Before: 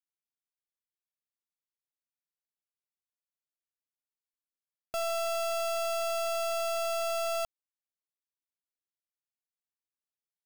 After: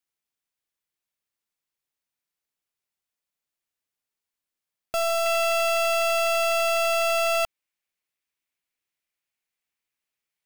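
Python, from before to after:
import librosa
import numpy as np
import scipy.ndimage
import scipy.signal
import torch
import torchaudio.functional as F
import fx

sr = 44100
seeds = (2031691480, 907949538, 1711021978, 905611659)

y = fx.peak_eq(x, sr, hz=2300.0, db=fx.steps((0.0, 2.5), (5.26, 9.0)), octaves=0.83)
y = F.gain(torch.from_numpy(y), 7.0).numpy()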